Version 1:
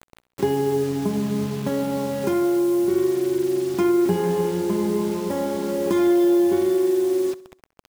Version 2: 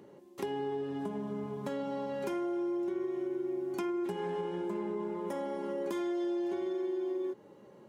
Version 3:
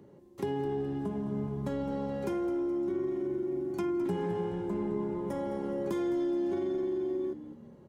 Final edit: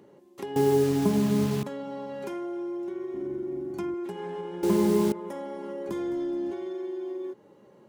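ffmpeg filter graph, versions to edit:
-filter_complex "[0:a]asplit=2[a][b];[2:a]asplit=2[c][d];[1:a]asplit=5[e][f][g][h][i];[e]atrim=end=0.562[j];[a]atrim=start=0.558:end=1.632[k];[f]atrim=start=1.628:end=3.142[l];[c]atrim=start=3.138:end=3.942[m];[g]atrim=start=3.938:end=4.632[n];[b]atrim=start=4.628:end=5.122[o];[h]atrim=start=5.118:end=5.892[p];[d]atrim=start=5.888:end=6.512[q];[i]atrim=start=6.508[r];[j][k]acrossfade=d=0.004:c1=hsin:c2=hsin[s];[s][l]acrossfade=d=0.004:c1=hsin:c2=hsin[t];[t][m]acrossfade=d=0.004:c1=hsin:c2=hsin[u];[u][n]acrossfade=d=0.004:c1=hsin:c2=hsin[v];[v][o]acrossfade=d=0.004:c1=hsin:c2=hsin[w];[w][p]acrossfade=d=0.004:c1=hsin:c2=hsin[x];[x][q]acrossfade=d=0.004:c1=hsin:c2=hsin[y];[y][r]acrossfade=d=0.004:c1=hsin:c2=hsin"

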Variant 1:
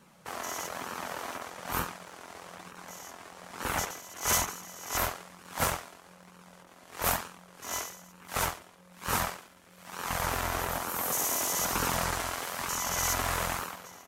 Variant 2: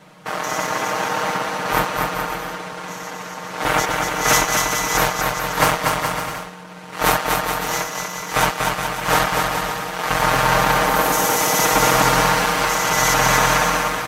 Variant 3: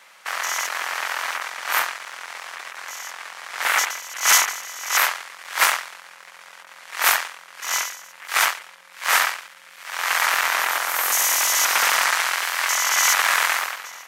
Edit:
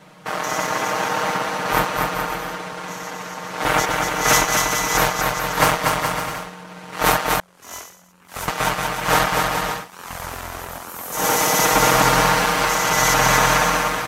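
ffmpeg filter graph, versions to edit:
-filter_complex "[0:a]asplit=2[a][b];[1:a]asplit=3[c][d][e];[c]atrim=end=7.402[f];[a]atrim=start=7.398:end=8.482[g];[d]atrim=start=8.478:end=9.89[h];[b]atrim=start=9.73:end=11.27[i];[e]atrim=start=11.11[j];[f][g]acrossfade=d=0.004:c1=hsin:c2=hsin[k];[k][h]acrossfade=d=0.004:c1=hsin:c2=hsin[l];[l][i]acrossfade=d=0.16:c1=tri:c2=tri[m];[m][j]acrossfade=d=0.16:c1=tri:c2=tri"

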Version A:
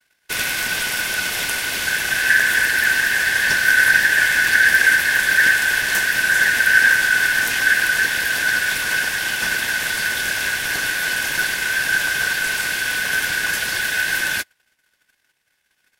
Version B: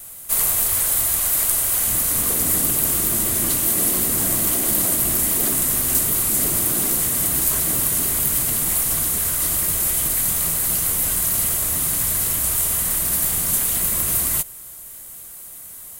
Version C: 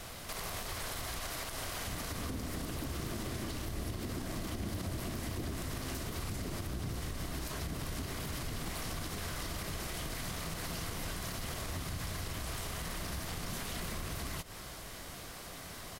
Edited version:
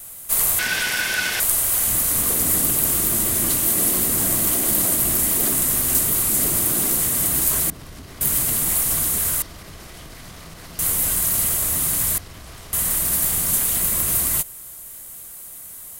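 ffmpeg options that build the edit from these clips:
-filter_complex "[2:a]asplit=3[a][b][c];[1:a]asplit=5[d][e][f][g][h];[d]atrim=end=0.592[i];[0:a]atrim=start=0.588:end=1.402[j];[e]atrim=start=1.398:end=7.702[k];[a]atrim=start=7.698:end=8.212[l];[f]atrim=start=8.208:end=9.422[m];[b]atrim=start=9.418:end=10.792[n];[g]atrim=start=10.788:end=12.182[o];[c]atrim=start=12.178:end=12.732[p];[h]atrim=start=12.728[q];[i][j]acrossfade=d=0.004:c1=hsin:c2=hsin[r];[r][k]acrossfade=d=0.004:c1=hsin:c2=hsin[s];[s][l]acrossfade=d=0.004:c1=hsin:c2=hsin[t];[t][m]acrossfade=d=0.004:c1=hsin:c2=hsin[u];[u][n]acrossfade=d=0.004:c1=hsin:c2=hsin[v];[v][o]acrossfade=d=0.004:c1=hsin:c2=hsin[w];[w][p]acrossfade=d=0.004:c1=hsin:c2=hsin[x];[x][q]acrossfade=d=0.004:c1=hsin:c2=hsin"

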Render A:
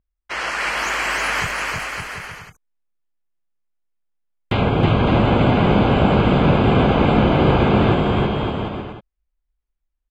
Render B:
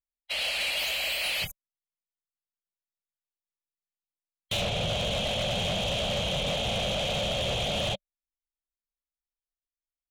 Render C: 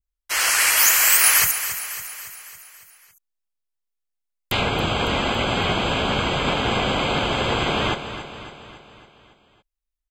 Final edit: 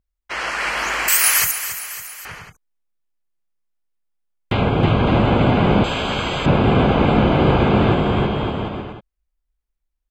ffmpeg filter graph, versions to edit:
-filter_complex "[2:a]asplit=2[a][b];[0:a]asplit=3[c][d][e];[c]atrim=end=1.082[f];[a]atrim=start=1.078:end=2.252[g];[d]atrim=start=2.248:end=5.842[h];[b]atrim=start=5.838:end=6.462[i];[e]atrim=start=6.458[j];[f][g]acrossfade=d=0.004:c1=hsin:c2=hsin[k];[k][h]acrossfade=d=0.004:c1=hsin:c2=hsin[l];[l][i]acrossfade=d=0.004:c1=hsin:c2=hsin[m];[m][j]acrossfade=d=0.004:c1=hsin:c2=hsin"

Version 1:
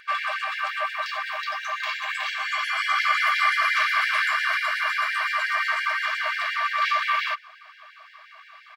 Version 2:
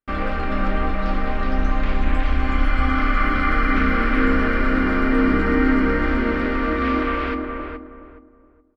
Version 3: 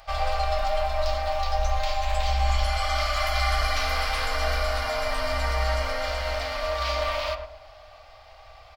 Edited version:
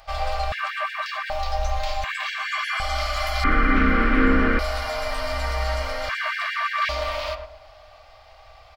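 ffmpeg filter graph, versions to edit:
-filter_complex "[0:a]asplit=3[a][b][c];[2:a]asplit=5[d][e][f][g][h];[d]atrim=end=0.522[i];[a]atrim=start=0.518:end=1.302[j];[e]atrim=start=1.298:end=2.042[k];[b]atrim=start=2.038:end=2.802[l];[f]atrim=start=2.798:end=3.442[m];[1:a]atrim=start=3.438:end=4.592[n];[g]atrim=start=4.588:end=6.092[o];[c]atrim=start=6.088:end=6.892[p];[h]atrim=start=6.888[q];[i][j]acrossfade=d=0.004:c1=hsin:c2=hsin[r];[r][k]acrossfade=d=0.004:c1=hsin:c2=hsin[s];[s][l]acrossfade=d=0.004:c1=hsin:c2=hsin[t];[t][m]acrossfade=d=0.004:c1=hsin:c2=hsin[u];[u][n]acrossfade=d=0.004:c1=hsin:c2=hsin[v];[v][o]acrossfade=d=0.004:c1=hsin:c2=hsin[w];[w][p]acrossfade=d=0.004:c1=hsin:c2=hsin[x];[x][q]acrossfade=d=0.004:c1=hsin:c2=hsin"

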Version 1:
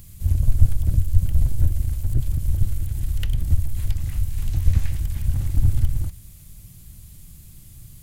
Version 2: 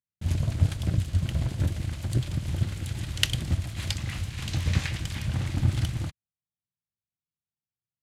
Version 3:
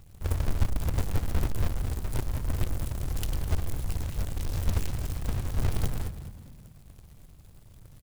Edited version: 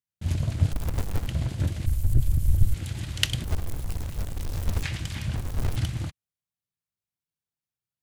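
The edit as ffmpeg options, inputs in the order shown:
-filter_complex "[2:a]asplit=3[a][b][c];[1:a]asplit=5[d][e][f][g][h];[d]atrim=end=0.722[i];[a]atrim=start=0.718:end=1.272[j];[e]atrim=start=1.268:end=1.862[k];[0:a]atrim=start=1.858:end=2.742[l];[f]atrim=start=2.738:end=3.442[m];[b]atrim=start=3.438:end=4.832[n];[g]atrim=start=4.828:end=5.362[o];[c]atrim=start=5.358:end=5.762[p];[h]atrim=start=5.758[q];[i][j]acrossfade=d=0.004:c1=hsin:c2=hsin[r];[r][k]acrossfade=d=0.004:c1=hsin:c2=hsin[s];[s][l]acrossfade=d=0.004:c1=hsin:c2=hsin[t];[t][m]acrossfade=d=0.004:c1=hsin:c2=hsin[u];[u][n]acrossfade=d=0.004:c1=hsin:c2=hsin[v];[v][o]acrossfade=d=0.004:c1=hsin:c2=hsin[w];[w][p]acrossfade=d=0.004:c1=hsin:c2=hsin[x];[x][q]acrossfade=d=0.004:c1=hsin:c2=hsin"

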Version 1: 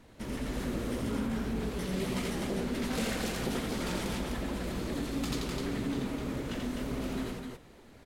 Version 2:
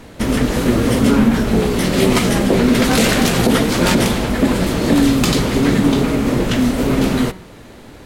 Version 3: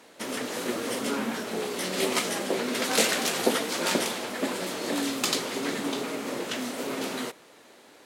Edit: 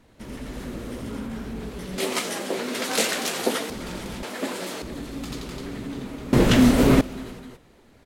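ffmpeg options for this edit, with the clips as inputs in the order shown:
-filter_complex "[2:a]asplit=2[a][b];[0:a]asplit=4[c][d][e][f];[c]atrim=end=1.982[g];[a]atrim=start=1.978:end=3.702[h];[d]atrim=start=3.698:end=4.232[i];[b]atrim=start=4.228:end=4.822[j];[e]atrim=start=4.818:end=6.332[k];[1:a]atrim=start=6.328:end=7.012[l];[f]atrim=start=7.008[m];[g][h]acrossfade=d=0.004:c1=hsin:c2=hsin[n];[n][i]acrossfade=d=0.004:c1=hsin:c2=hsin[o];[o][j]acrossfade=d=0.004:c1=hsin:c2=hsin[p];[p][k]acrossfade=d=0.004:c1=hsin:c2=hsin[q];[q][l]acrossfade=d=0.004:c1=hsin:c2=hsin[r];[r][m]acrossfade=d=0.004:c1=hsin:c2=hsin"

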